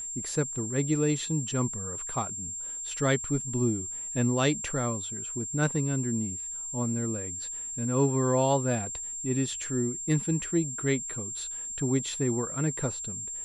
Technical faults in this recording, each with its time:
whistle 7,400 Hz −34 dBFS

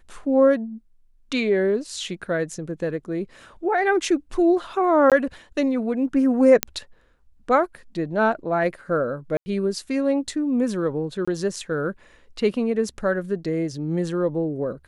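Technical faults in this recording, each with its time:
0:05.10–0:05.12: drop-out 17 ms
0:06.63: click −1 dBFS
0:09.37–0:09.46: drop-out 90 ms
0:11.25–0:11.28: drop-out 25 ms

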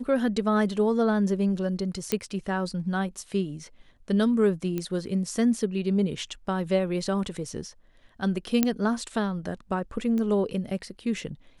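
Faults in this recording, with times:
0:02.12: click −10 dBFS
0:04.78: click −17 dBFS
0:08.63: click −7 dBFS
0:10.18: click −20 dBFS

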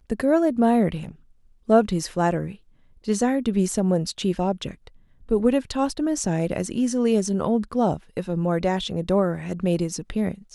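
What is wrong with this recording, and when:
0:01.02–0:01.11: clipping −30 dBFS

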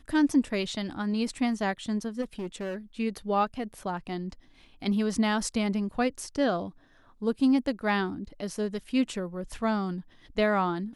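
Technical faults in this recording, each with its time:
0:02.21–0:02.76: clipping −30 dBFS

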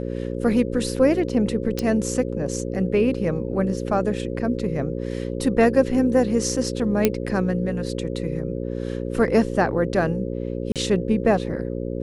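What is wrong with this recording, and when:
mains buzz 60 Hz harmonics 9 −28 dBFS
0:01.79: click −11 dBFS
0:07.05: click −3 dBFS
0:10.72–0:10.76: drop-out 37 ms

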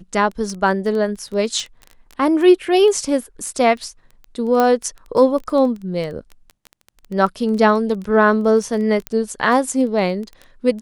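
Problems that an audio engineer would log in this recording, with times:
surface crackle 10 per second −24 dBFS
0:04.60: click −5 dBFS
0:09.07: click −8 dBFS

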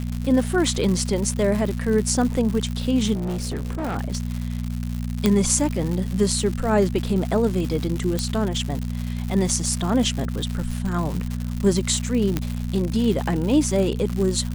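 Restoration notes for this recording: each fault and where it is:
surface crackle 190 per second −26 dBFS
mains hum 60 Hz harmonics 4 −27 dBFS
0:03.14–0:03.97: clipping −23 dBFS
0:05.26: click −5 dBFS
0:08.19: click −10 dBFS
0:12.37: click −9 dBFS

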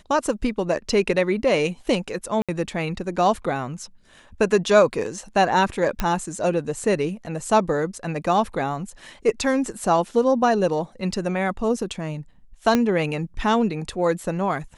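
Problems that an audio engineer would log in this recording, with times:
0:02.42–0:02.49: drop-out 66 ms
0:06.00: click −9 dBFS
0:12.75: click −6 dBFS

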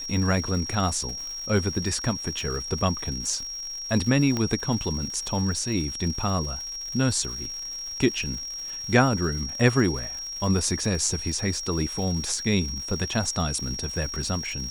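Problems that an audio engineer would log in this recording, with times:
surface crackle 240 per second −34 dBFS
whistle 5,600 Hz −32 dBFS
0:04.37: click −14 dBFS

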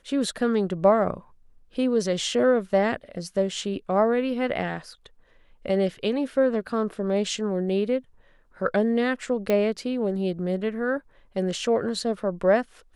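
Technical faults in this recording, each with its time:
0:09.50: click −12 dBFS

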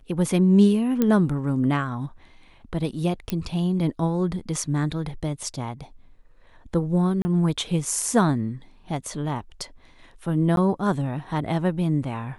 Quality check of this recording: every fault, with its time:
0:01.02: click −9 dBFS
0:03.30: click −11 dBFS
0:07.22–0:07.25: drop-out 30 ms
0:10.56–0:10.57: drop-out 12 ms

